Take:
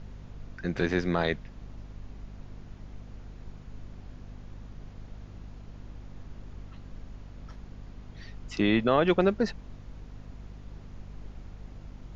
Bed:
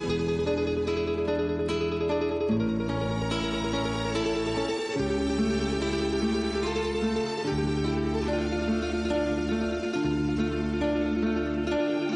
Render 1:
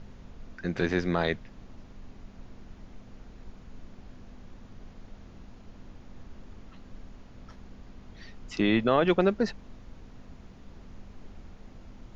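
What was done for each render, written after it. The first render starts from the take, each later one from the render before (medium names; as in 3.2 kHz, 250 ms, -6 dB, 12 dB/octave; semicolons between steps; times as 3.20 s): hum notches 50/100/150 Hz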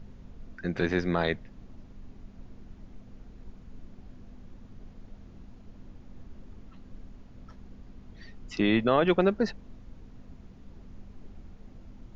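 noise reduction 6 dB, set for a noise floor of -50 dBFS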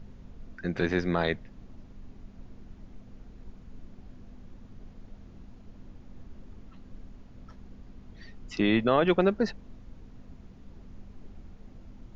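no audible change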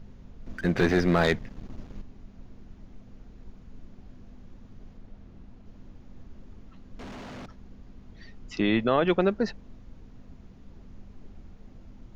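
0.46–2.02 s: waveshaping leveller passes 2; 4.97–5.66 s: treble shelf 5.8 kHz -8.5 dB; 6.99–7.46 s: overdrive pedal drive 36 dB, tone 3.6 kHz, clips at -33 dBFS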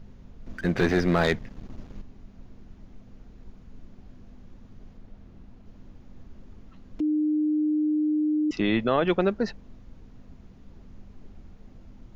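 7.00–8.51 s: bleep 304 Hz -21 dBFS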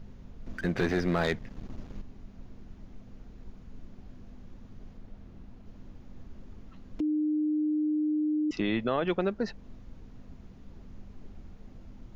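compression 1.5:1, threshold -33 dBFS, peak gain reduction 6 dB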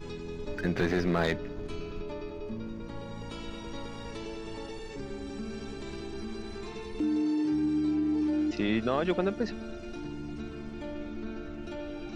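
add bed -12.5 dB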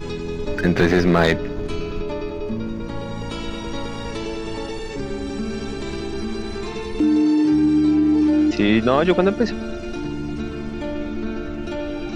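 trim +11.5 dB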